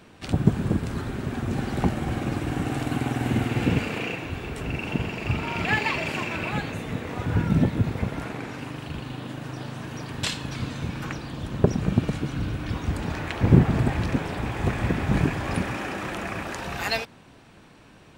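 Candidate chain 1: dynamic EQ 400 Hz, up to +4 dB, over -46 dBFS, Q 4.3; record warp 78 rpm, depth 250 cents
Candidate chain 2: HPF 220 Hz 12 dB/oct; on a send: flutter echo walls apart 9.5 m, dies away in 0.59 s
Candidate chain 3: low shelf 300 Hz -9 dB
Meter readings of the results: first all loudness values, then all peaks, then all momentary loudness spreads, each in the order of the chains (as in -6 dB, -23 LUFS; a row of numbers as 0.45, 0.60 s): -26.5, -29.0, -31.0 LUFS; -1.5, -5.5, -7.5 dBFS; 11, 10, 10 LU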